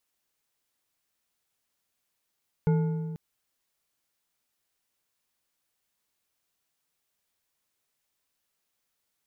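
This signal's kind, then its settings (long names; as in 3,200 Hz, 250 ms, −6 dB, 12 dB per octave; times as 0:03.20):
struck metal bar, length 0.49 s, lowest mode 161 Hz, decay 1.94 s, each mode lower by 8.5 dB, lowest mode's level −19 dB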